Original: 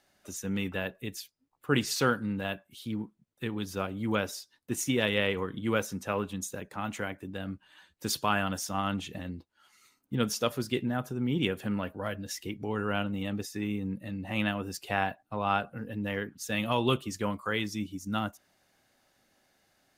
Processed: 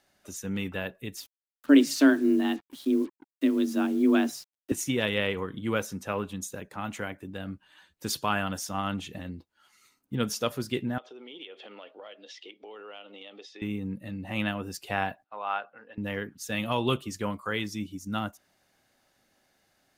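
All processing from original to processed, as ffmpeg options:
-filter_complex "[0:a]asettb=1/sr,asplit=3[a][b][c];[a]atrim=end=1.174[d];[b]atrim=start=1.17:end=4.72,asetpts=PTS-STARTPTS,afade=t=in:d=0.004:c=qsin,afade=t=out:st=3.546:d=0.004:c=qsin,lowshelf=f=210:t=q:w=1.5:g=13.5,afreqshift=140,acrusher=bits=7:mix=0:aa=0.5[e];[c]atrim=start=4.716[f];[d][e]acrossfade=d=0.004:c1=hsin:c2=qsin[g];[g][f]acrossfade=d=0.004:c1=qsin:c2=hsin,asettb=1/sr,asplit=3[h][i][j];[h]atrim=end=10.984[k];[i]atrim=start=10.98:end=13.62,asetpts=PTS-STARTPTS,afade=t=in:d=0.004:c=qsin,afade=t=out:st=2.636:d=0.004:c=qsin,highpass=f=400:w=0.5412,highpass=f=400:w=1.3066,equalizer=f=990:t=q:w=4:g=-5,equalizer=f=1.6k:t=q:w=4:g=-9,equalizer=f=3.3k:t=q:w=4:g=9,lowpass=f=4.6k:w=0.5412,lowpass=f=4.6k:w=1.3066,acompressor=threshold=-42dB:ratio=4:attack=3.2:release=140:knee=1:detection=peak[l];[j]atrim=start=13.616[m];[k][l]acrossfade=d=0.004:c1=hsin:c2=qsin[n];[n][m]acrossfade=d=0.004:c1=qsin:c2=hsin,asettb=1/sr,asplit=3[o][p][q];[o]atrim=end=15.244[r];[p]atrim=start=15.24:end=15.98,asetpts=PTS-STARTPTS,afade=t=in:d=0.004:c=qsin,afade=t=out:st=0.736:d=0.004:c=qsin,highpass=720,lowpass=5.4k,aemphasis=mode=reproduction:type=75kf[s];[q]atrim=start=15.976[t];[r][s]acrossfade=d=0.004:c1=hsin:c2=qsin[u];[u][t]acrossfade=d=0.004:c1=qsin:c2=hsin"

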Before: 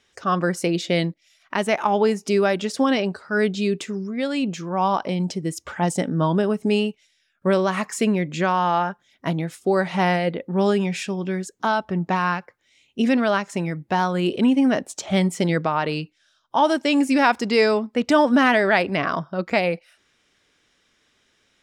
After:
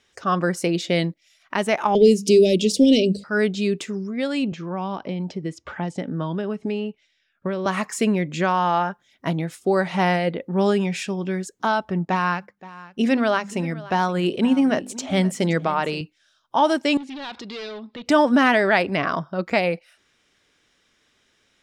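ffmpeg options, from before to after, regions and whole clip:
-filter_complex "[0:a]asettb=1/sr,asplit=3[a][b][c];[a]atrim=end=1.954[d];[b]atrim=start=1.95:end=3.24,asetpts=PTS-STARTPTS,afade=t=in:d=0.004:c=qsin,afade=t=out:st=1.286:d=0.004:c=qsin,bandreject=f=50:t=h:w=6,bandreject=f=100:t=h:w=6,bandreject=f=150:t=h:w=6,bandreject=f=200:t=h:w=6,bandreject=f=250:t=h:w=6,acontrast=85,asuperstop=centerf=1200:order=8:qfactor=0.54[e];[c]atrim=start=3.236[f];[d][e]acrossfade=d=0.004:c1=hsin:c2=qsin[g];[g][f]acrossfade=d=0.004:c1=qsin:c2=hsin,asettb=1/sr,asplit=3[h][i][j];[h]atrim=end=4.524[k];[i]atrim=start=4.52:end=7.66,asetpts=PTS-STARTPTS,afade=t=in:d=0.004:c=qsin,afade=t=out:st=3.136:d=0.004:c=qsin,lowpass=4k,acrossover=split=440|1700[l][m][n];[l]acompressor=threshold=-26dB:ratio=4[o];[m]acompressor=threshold=-33dB:ratio=4[p];[n]acompressor=threshold=-42dB:ratio=4[q];[o][p][q]amix=inputs=3:normalize=0[r];[j]atrim=start=7.656[s];[k][r]acrossfade=d=0.004:c1=hsin:c2=qsin[t];[t][s]acrossfade=d=0.004:c1=qsin:c2=hsin,asettb=1/sr,asplit=3[u][v][w];[u]atrim=end=12.054[x];[v]atrim=start=12.05:end=16.01,asetpts=PTS-STARTPTS,afade=t=in:d=0.004:c=qsin,afade=t=out:st=3.956:d=0.004:c=qsin,bandreject=f=50:t=h:w=6,bandreject=f=100:t=h:w=6,bandreject=f=150:t=h:w=6,bandreject=f=200:t=h:w=6,bandreject=f=250:t=h:w=6,bandreject=f=300:t=h:w=6,agate=range=-8dB:threshold=-48dB:ratio=16:release=100:detection=peak,aecho=1:1:523:0.119,atrim=end_sample=174636[y];[w]atrim=start=16.006[z];[x][y]acrossfade=d=0.004:c1=hsin:c2=qsin[aa];[aa][z]acrossfade=d=0.004:c1=qsin:c2=hsin,asettb=1/sr,asplit=3[ab][ac][ad];[ab]atrim=end=16.974[ae];[ac]atrim=start=16.97:end=18.06,asetpts=PTS-STARTPTS,afade=t=in:d=0.004:c=qsin,afade=t=out:st=1.086:d=0.004:c=qsin,volume=19.5dB,asoftclip=hard,volume=-19.5dB,acompressor=threshold=-33dB:ratio=16:attack=3.2:release=140:knee=1:detection=peak,lowpass=f=3.8k:t=q:w=4.4[af];[ad]atrim=start=18.056[ag];[ae][af]acrossfade=d=0.004:c1=hsin:c2=qsin[ah];[ah][ag]acrossfade=d=0.004:c1=qsin:c2=hsin"

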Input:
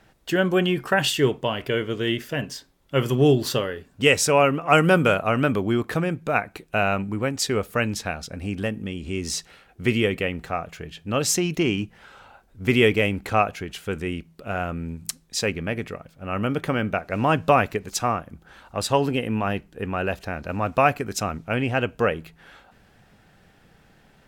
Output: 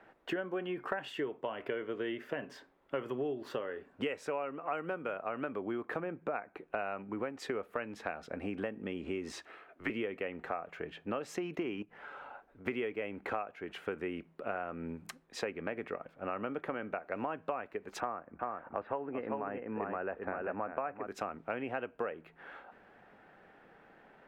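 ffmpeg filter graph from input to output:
-filter_complex "[0:a]asettb=1/sr,asplit=3[a][b][c];[a]atrim=end=6.004[d];[b]atrim=start=6:end=6.79,asetpts=PTS-STARTPTS,afade=t=in:d=0.004:c=qsin,afade=t=out:st=0.786:d=0.004:c=qsin,highshelf=f=3.5k:g=-9,bandreject=f=4.7k:w=22[e];[c]atrim=start=6.786[f];[d][e]acrossfade=d=0.004:c1=hsin:c2=qsin[g];[g][f]acrossfade=d=0.004:c1=qsin:c2=hsin,asettb=1/sr,asplit=3[h][i][j];[h]atrim=end=9.324[k];[i]atrim=start=9.32:end=9.9,asetpts=PTS-STARTPTS,afade=t=in:d=0.004:c=qsin,afade=t=out:st=0.576:d=0.004:c=qsin,highpass=f=260:p=1,afreqshift=-87[l];[j]atrim=start=9.896[m];[k][l]acrossfade=d=0.004:c1=hsin:c2=qsin[n];[n][m]acrossfade=d=0.004:c1=qsin:c2=hsin,asettb=1/sr,asplit=3[o][p][q];[o]atrim=end=11.824[r];[p]atrim=start=11.82:end=12.66,asetpts=PTS-STARTPTS,afade=t=in:d=0.004:c=qsin,afade=t=out:st=0.836:d=0.004:c=qsin,aecho=1:1:6.9:0.3,atrim=end_sample=37044,acompressor=threshold=-40dB:ratio=10:attack=3.2:release=140:knee=1:detection=peak[s];[q]atrim=start=12.656[t];[r][s]acrossfade=d=0.004:c1=hsin:c2=qsin[u];[u][t]acrossfade=d=0.004:c1=qsin:c2=hsin,asettb=1/sr,asplit=3[v][w][x];[v]atrim=end=18.004[y];[w]atrim=start=18:end=21.07,asetpts=PTS-STARTPTS,afade=t=in:d=0.004:c=qsin,afade=t=out:st=3.066:d=0.004:c=qsin,lowpass=f=2.2k:w=0.5412,lowpass=f=2.2k:w=1.3066,aecho=1:1:391:0.531,atrim=end_sample=135387[z];[x]atrim=start=21.066[aa];[y][z]acrossfade=d=0.004:c1=hsin:c2=qsin[ab];[ab][aa]acrossfade=d=0.004:c1=qsin:c2=hsin,acrossover=split=260 2300:gain=0.112 1 0.0708[ac][ad][ae];[ac][ad][ae]amix=inputs=3:normalize=0,acompressor=threshold=-34dB:ratio=12,volume=1dB"

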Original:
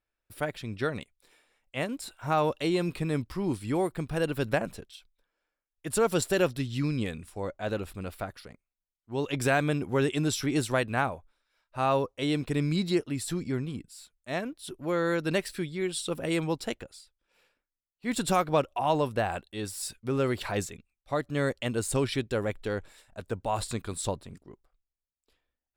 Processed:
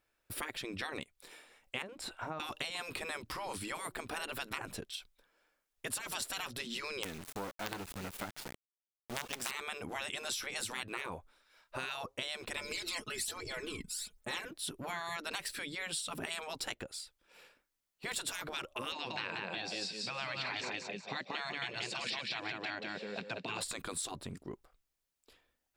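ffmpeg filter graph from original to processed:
-filter_complex "[0:a]asettb=1/sr,asplit=3[a][b][c];[a]atrim=end=1.824[d];[b]atrim=start=1.82:end=2.4,asetpts=PTS-STARTPTS,afade=t=in:d=0.004:c=qsin,afade=t=out:st=0.576:d=0.004:c=qsin,lowpass=f=2.1k:p=1,acompressor=threshold=-36dB:ratio=10:attack=3.2:release=140:knee=1:detection=peak[e];[c]atrim=start=2.396[f];[d][e]acrossfade=d=0.004:c1=hsin:c2=qsin[g];[g][f]acrossfade=d=0.004:c1=qsin:c2=hsin,asettb=1/sr,asplit=3[h][i][j];[h]atrim=end=7.034[k];[i]atrim=start=7.03:end=9.51,asetpts=PTS-STARTPTS,afade=t=in:d=0.004:c=qsin,afade=t=out:st=2.476:d=0.004:c=qsin,aeval=exprs='if(lt(val(0),0),0.708*val(0),val(0))':c=same,equalizer=f=530:t=o:w=0.43:g=-4.5,acrusher=bits=5:dc=4:mix=0:aa=0.000001[l];[j]atrim=start=9.506[m];[k][l]acrossfade=d=0.004:c1=hsin:c2=qsin[n];[n][m]acrossfade=d=0.004:c1=qsin:c2=hsin,asettb=1/sr,asplit=3[o][p][q];[o]atrim=end=12.574[r];[p]atrim=start=12.57:end=14.51,asetpts=PTS-STARTPTS,afade=t=in:d=0.004:c=qsin,afade=t=out:st=1.936:d=0.004:c=qsin,aecho=1:1:4.7:0.73,atrim=end_sample=85554,aphaser=in_gain=1:out_gain=1:delay=1:decay=0.62:speed=1.2:type=triangular[s];[q]atrim=start=14.506[t];[r][s]acrossfade=d=0.004:c1=hsin:c2=qsin[u];[u][t]acrossfade=d=0.004:c1=qsin:c2=hsin,asettb=1/sr,asplit=3[v][w][x];[v]atrim=end=18.924[y];[w]atrim=start=18.92:end=23.61,asetpts=PTS-STARTPTS,afade=t=in:d=0.004:c=qsin,afade=t=out:st=4.686:d=0.004:c=qsin,highpass=f=170:w=0.5412,highpass=f=170:w=1.3066,equalizer=f=190:t=q:w=4:g=7,equalizer=f=300:t=q:w=4:g=-7,equalizer=f=510:t=q:w=4:g=7,equalizer=f=1.3k:t=q:w=4:g=-5,equalizer=f=2.5k:t=q:w=4:g=8,equalizer=f=4.4k:t=q:w=4:g=7,lowpass=f=5.6k:w=0.5412,lowpass=f=5.6k:w=1.3066,aecho=1:1:183|366|549:0.596|0.149|0.0372,atrim=end_sample=206829[z];[x]atrim=start=23.606[aa];[y][z]acrossfade=d=0.004:c1=hsin:c2=qsin[ab];[ab][aa]acrossfade=d=0.004:c1=qsin:c2=hsin,afftfilt=real='re*lt(hypot(re,im),0.0794)':imag='im*lt(hypot(re,im),0.0794)':win_size=1024:overlap=0.75,acompressor=threshold=-46dB:ratio=4,lowshelf=f=99:g=-8.5,volume=8.5dB"

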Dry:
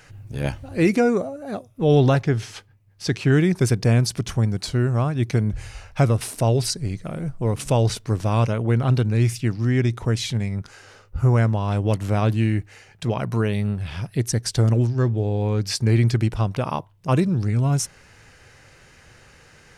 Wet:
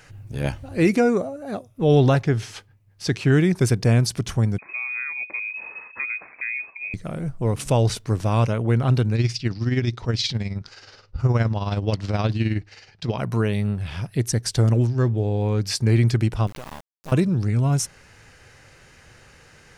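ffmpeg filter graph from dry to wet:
-filter_complex "[0:a]asettb=1/sr,asplit=3[a][b][c];[a]atrim=end=4.584[d];[b]atrim=start=4.58:end=6.94,asetpts=PTS-STARTPTS,afade=t=in:d=0.004:c=qsin,afade=t=out:st=2.356:d=0.004:c=qsin,acompressor=threshold=-31dB:ratio=2.5:attack=3.2:release=140:knee=1:detection=peak,lowpass=f=2.2k:t=q:w=0.5098,lowpass=f=2.2k:t=q:w=0.6013,lowpass=f=2.2k:t=q:w=0.9,lowpass=f=2.2k:t=q:w=2.563,afreqshift=-2600,highpass=f=120:p=1[e];[c]atrim=start=6.936[f];[d][e]acrossfade=d=0.004:c1=hsin:c2=qsin[g];[g][f]acrossfade=d=0.004:c1=qsin:c2=hsin,asettb=1/sr,asplit=3[h][i][j];[h]atrim=end=9.154[k];[i]atrim=start=9.15:end=13.18,asetpts=PTS-STARTPTS,afade=t=in:d=0.004:c=qsin,afade=t=out:st=4.026:d=0.004:c=qsin,tremolo=f=19:d=0.55,lowpass=f=4.8k:t=q:w=3.3[l];[j]atrim=start=13.176[m];[k][l]acrossfade=d=0.004:c1=hsin:c2=qsin[n];[n][m]acrossfade=d=0.004:c1=qsin:c2=hsin,asettb=1/sr,asplit=3[o][p][q];[o]atrim=end=16.474[r];[p]atrim=start=16.47:end=17.12,asetpts=PTS-STARTPTS,afade=t=in:d=0.004:c=qsin,afade=t=out:st=0.646:d=0.004:c=qsin,highpass=f=170:p=1,acompressor=threshold=-29dB:ratio=8:attack=3.2:release=140:knee=1:detection=peak,acrusher=bits=4:dc=4:mix=0:aa=0.000001[s];[q]atrim=start=17.116[t];[r][s]acrossfade=d=0.004:c1=hsin:c2=qsin[u];[u][t]acrossfade=d=0.004:c1=qsin:c2=hsin"

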